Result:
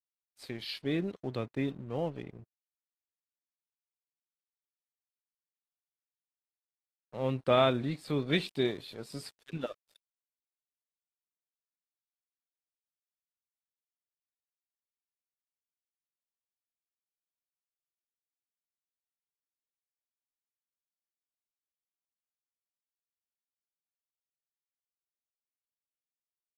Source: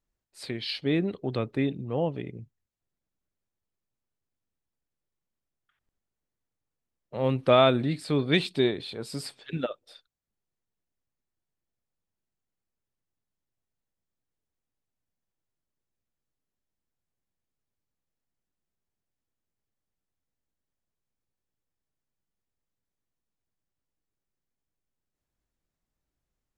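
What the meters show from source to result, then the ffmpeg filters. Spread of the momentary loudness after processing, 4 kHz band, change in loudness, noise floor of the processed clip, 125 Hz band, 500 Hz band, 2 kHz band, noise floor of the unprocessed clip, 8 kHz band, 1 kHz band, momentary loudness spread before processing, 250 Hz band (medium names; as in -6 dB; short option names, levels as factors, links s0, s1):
18 LU, -6.0 dB, -5.5 dB, under -85 dBFS, -6.0 dB, -6.0 dB, -5.5 dB, under -85 dBFS, -7.5 dB, -5.5 dB, 17 LU, -6.0 dB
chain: -af "aeval=exprs='sgn(val(0))*max(abs(val(0))-0.00376,0)':c=same,volume=0.531" -ar 32000 -c:a aac -b:a 48k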